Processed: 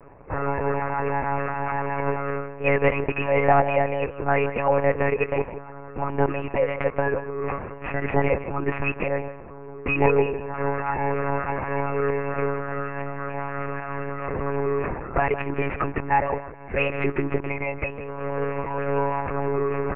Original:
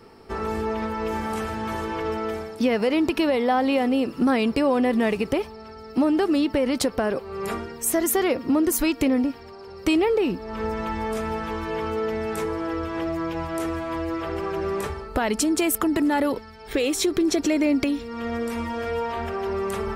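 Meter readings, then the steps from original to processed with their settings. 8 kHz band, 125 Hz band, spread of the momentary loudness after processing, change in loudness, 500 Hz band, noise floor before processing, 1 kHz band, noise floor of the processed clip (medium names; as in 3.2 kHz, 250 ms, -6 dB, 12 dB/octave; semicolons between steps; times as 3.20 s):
under -40 dB, +8.0 dB, 9 LU, -1.0 dB, +1.0 dB, -41 dBFS, +3.0 dB, -39 dBFS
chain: tracing distortion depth 0.16 ms; rippled Chebyshev low-pass 2.7 kHz, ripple 3 dB; peaking EQ 290 Hz -14 dB 0.45 oct; comb 2.4 ms, depth 79%; delay 159 ms -13 dB; monotone LPC vocoder at 8 kHz 140 Hz; tape noise reduction on one side only decoder only; trim +2 dB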